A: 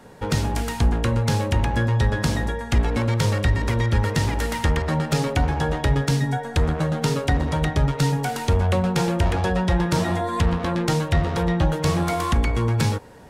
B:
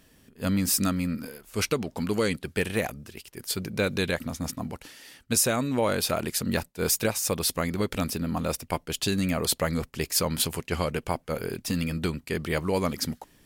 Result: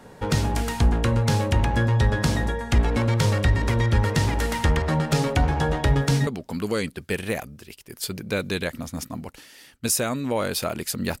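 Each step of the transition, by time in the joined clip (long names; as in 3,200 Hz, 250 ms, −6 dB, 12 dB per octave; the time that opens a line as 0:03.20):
A
0:05.86: mix in B from 0:01.33 0.41 s −14.5 dB
0:06.27: continue with B from 0:01.74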